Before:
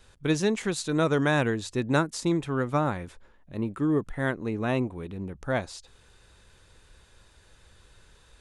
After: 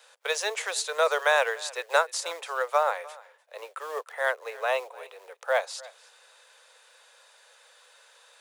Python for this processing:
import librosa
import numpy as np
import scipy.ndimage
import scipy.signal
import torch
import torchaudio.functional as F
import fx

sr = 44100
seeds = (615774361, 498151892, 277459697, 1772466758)

p1 = fx.quant_float(x, sr, bits=2)
p2 = x + (p1 * librosa.db_to_amplitude(-10.5))
p3 = scipy.signal.sosfilt(scipy.signal.butter(12, 480.0, 'highpass', fs=sr, output='sos'), p2)
p4 = p3 + 10.0 ** (-21.5 / 20.0) * np.pad(p3, (int(299 * sr / 1000.0), 0))[:len(p3)]
y = p4 * librosa.db_to_amplitude(2.0)